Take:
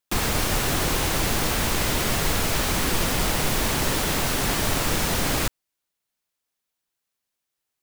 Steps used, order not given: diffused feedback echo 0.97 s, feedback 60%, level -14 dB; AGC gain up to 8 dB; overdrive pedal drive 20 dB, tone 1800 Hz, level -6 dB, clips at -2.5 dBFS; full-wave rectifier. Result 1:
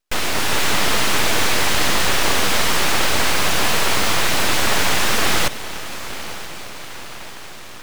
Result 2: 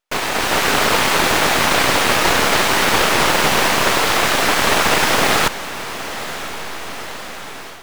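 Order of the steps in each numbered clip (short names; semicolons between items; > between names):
AGC > overdrive pedal > diffused feedback echo > full-wave rectifier; full-wave rectifier > overdrive pedal > diffused feedback echo > AGC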